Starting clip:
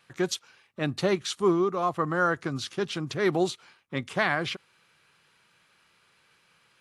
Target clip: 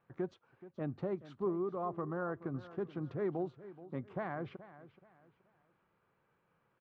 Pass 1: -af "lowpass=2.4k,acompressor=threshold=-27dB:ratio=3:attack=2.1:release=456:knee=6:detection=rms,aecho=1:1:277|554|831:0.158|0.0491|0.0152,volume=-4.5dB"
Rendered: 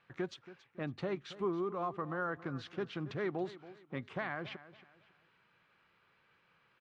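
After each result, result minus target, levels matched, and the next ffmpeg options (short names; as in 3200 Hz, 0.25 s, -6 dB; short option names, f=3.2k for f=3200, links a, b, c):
2000 Hz band +7.5 dB; echo 0.15 s early
-af "lowpass=920,acompressor=threshold=-27dB:ratio=3:attack=2.1:release=456:knee=6:detection=rms,aecho=1:1:277|554|831:0.158|0.0491|0.0152,volume=-4.5dB"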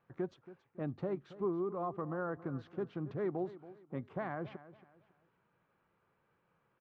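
echo 0.15 s early
-af "lowpass=920,acompressor=threshold=-27dB:ratio=3:attack=2.1:release=456:knee=6:detection=rms,aecho=1:1:427|854|1281:0.158|0.0491|0.0152,volume=-4.5dB"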